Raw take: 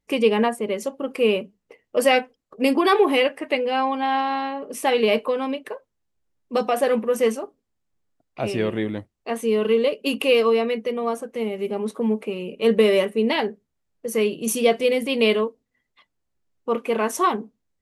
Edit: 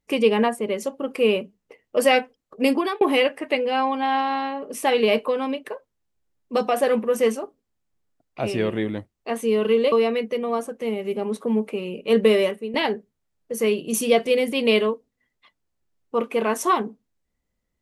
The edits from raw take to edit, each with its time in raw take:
2.71–3.01 fade out
9.92–10.46 cut
12.87–13.28 fade out, to -15 dB

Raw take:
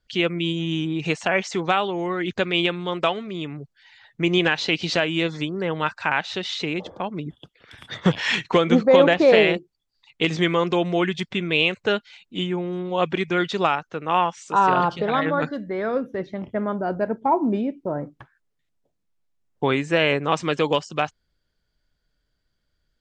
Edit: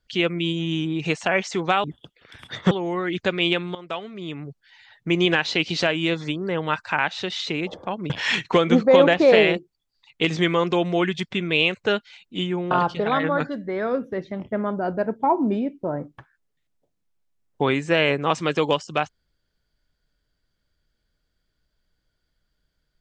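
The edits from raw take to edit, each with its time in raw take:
2.88–3.61 fade in, from -16.5 dB
7.23–8.1 move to 1.84
12.71–14.73 cut

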